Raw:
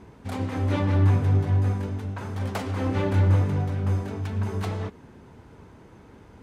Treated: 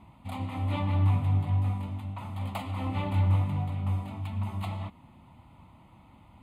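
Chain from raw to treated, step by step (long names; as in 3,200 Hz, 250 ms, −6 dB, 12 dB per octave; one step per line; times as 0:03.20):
low-shelf EQ 120 Hz −4 dB
phaser with its sweep stopped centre 1,600 Hz, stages 6
level −1.5 dB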